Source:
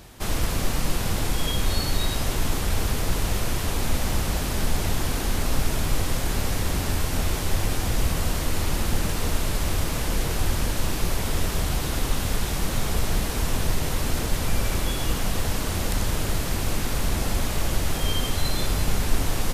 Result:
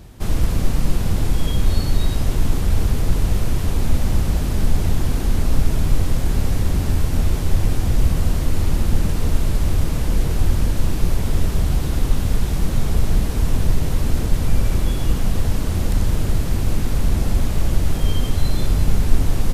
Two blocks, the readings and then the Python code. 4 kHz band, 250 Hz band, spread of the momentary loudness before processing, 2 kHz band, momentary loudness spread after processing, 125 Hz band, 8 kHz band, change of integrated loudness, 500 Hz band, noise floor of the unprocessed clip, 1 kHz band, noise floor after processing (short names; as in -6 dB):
-4.0 dB, +5.0 dB, 1 LU, -3.5 dB, 2 LU, +7.5 dB, -4.0 dB, +4.5 dB, +1.0 dB, -28 dBFS, -2.0 dB, -22 dBFS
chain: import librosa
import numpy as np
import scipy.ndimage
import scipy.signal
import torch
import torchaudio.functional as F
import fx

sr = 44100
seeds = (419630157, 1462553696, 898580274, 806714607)

y = fx.low_shelf(x, sr, hz=390.0, db=12.0)
y = F.gain(torch.from_numpy(y), -4.0).numpy()